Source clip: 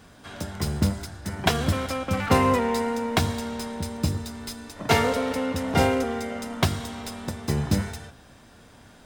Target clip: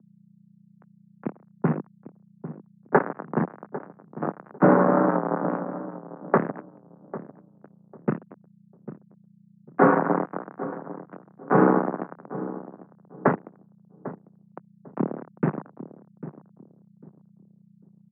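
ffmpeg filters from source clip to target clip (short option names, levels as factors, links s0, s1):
-filter_complex "[0:a]asplit=2[s0][s1];[s1]aecho=0:1:110:0.168[s2];[s0][s2]amix=inputs=2:normalize=0,acrusher=bits=2:mix=0:aa=0.5,asplit=2[s3][s4];[s4]adelay=399,lowpass=f=1400:p=1,volume=0.224,asplit=2[s5][s6];[s6]adelay=399,lowpass=f=1400:p=1,volume=0.27,asplit=2[s7][s8];[s8]adelay=399,lowpass=f=1400:p=1,volume=0.27[s9];[s5][s7][s9]amix=inputs=3:normalize=0[s10];[s3][s10]amix=inputs=2:normalize=0,aeval=exprs='val(0)+0.00501*(sin(2*PI*60*n/s)+sin(2*PI*2*60*n/s)/2+sin(2*PI*3*60*n/s)/3+sin(2*PI*4*60*n/s)/4+sin(2*PI*5*60*n/s)/5)':c=same,highpass=f=220:t=q:w=0.5412,highpass=f=220:t=q:w=1.307,lowpass=f=3000:t=q:w=0.5176,lowpass=f=3000:t=q:w=0.7071,lowpass=f=3000:t=q:w=1.932,afreqshift=110,asetrate=22050,aresample=44100,volume=1.41"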